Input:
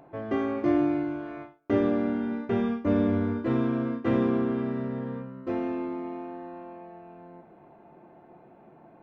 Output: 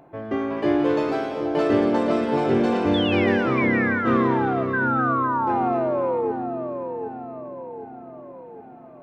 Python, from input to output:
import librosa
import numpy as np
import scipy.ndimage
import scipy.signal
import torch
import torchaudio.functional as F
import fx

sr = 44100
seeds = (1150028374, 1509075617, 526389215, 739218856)

p1 = fx.spec_paint(x, sr, seeds[0], shape='fall', start_s=4.73, length_s=1.59, low_hz=430.0, high_hz=1600.0, level_db=-26.0)
p2 = p1 + fx.echo_split(p1, sr, split_hz=1000.0, low_ms=765, high_ms=254, feedback_pct=52, wet_db=-7.0, dry=0)
p3 = fx.echo_pitch(p2, sr, ms=416, semitones=7, count=2, db_per_echo=-3.0)
y = p3 * 10.0 ** (2.0 / 20.0)